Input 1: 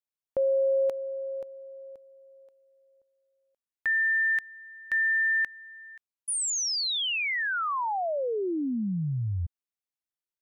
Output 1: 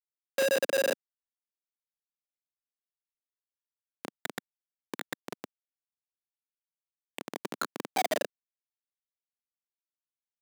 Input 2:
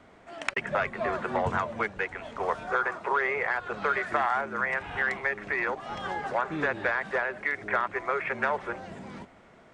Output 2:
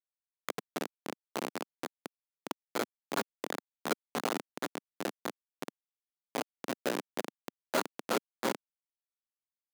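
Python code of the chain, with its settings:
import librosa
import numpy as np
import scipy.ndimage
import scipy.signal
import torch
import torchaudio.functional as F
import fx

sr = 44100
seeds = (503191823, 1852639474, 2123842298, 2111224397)

y = fx.doubler(x, sr, ms=17.0, db=-12.5)
y = y + 10.0 ** (-20.5 / 20.0) * np.pad(y, (int(795 * sr / 1000.0), 0))[:len(y)]
y = fx.chorus_voices(y, sr, voices=4, hz=1.4, base_ms=16, depth_ms=3.2, mix_pct=45)
y = fx.peak_eq(y, sr, hz=620.0, db=4.5, octaves=1.2)
y = fx.room_shoebox(y, sr, seeds[0], volume_m3=78.0, walls='mixed', distance_m=0.47)
y = fx.over_compress(y, sr, threshold_db=-19.0, ratio=-1.0)
y = np.repeat(y[::8], 8)[:len(y)]
y = scipy.signal.sosfilt(scipy.signal.butter(4, 4900.0, 'lowpass', fs=sr, output='sos'), y)
y = fx.low_shelf(y, sr, hz=430.0, db=-4.0)
y = fx.schmitt(y, sr, flips_db=-19.5)
y = scipy.signal.sosfilt(scipy.signal.butter(4, 240.0, 'highpass', fs=sr, output='sos'), y)
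y = F.gain(torch.from_numpy(y), 5.5).numpy()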